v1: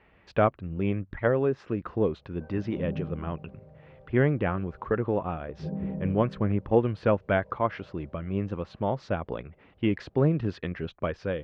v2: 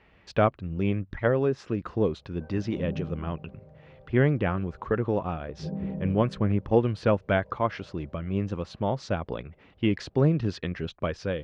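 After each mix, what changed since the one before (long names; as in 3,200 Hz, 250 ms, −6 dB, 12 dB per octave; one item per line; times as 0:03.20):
speech: add bass and treble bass +2 dB, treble +14 dB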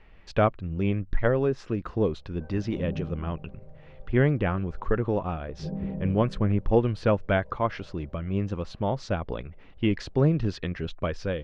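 master: remove high-pass filter 78 Hz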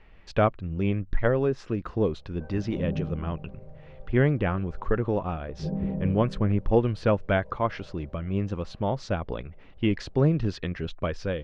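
background +3.0 dB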